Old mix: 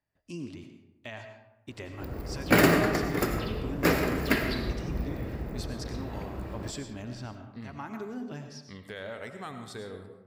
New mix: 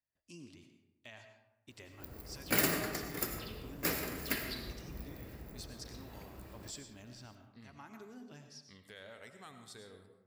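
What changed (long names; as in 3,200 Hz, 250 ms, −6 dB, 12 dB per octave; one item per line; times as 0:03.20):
speech: add high-shelf EQ 10,000 Hz −10.5 dB
master: add first-order pre-emphasis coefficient 0.8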